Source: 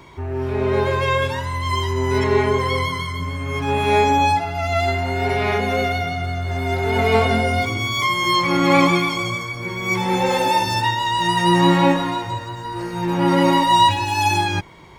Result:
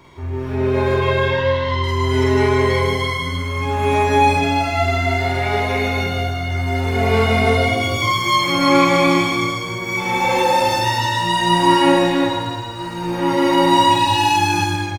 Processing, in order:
0:00.94–0:01.84: low-pass filter 4,700 Hz 24 dB per octave
on a send: loudspeakers that aren't time-aligned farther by 16 metres 0 dB, 54 metres −3 dB
on the sum: reverb whose tail is shaped and stops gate 350 ms rising, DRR 1.5 dB
level −4 dB

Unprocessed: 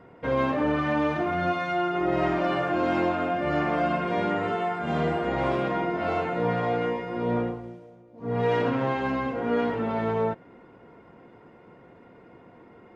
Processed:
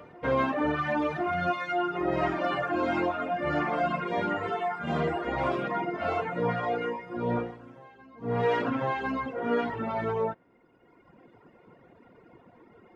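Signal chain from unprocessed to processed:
dynamic equaliser 1,300 Hz, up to +3 dB, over −38 dBFS, Q 0.8
reverb reduction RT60 1.6 s
backwards echo 1,052 ms −22 dB
level −1 dB

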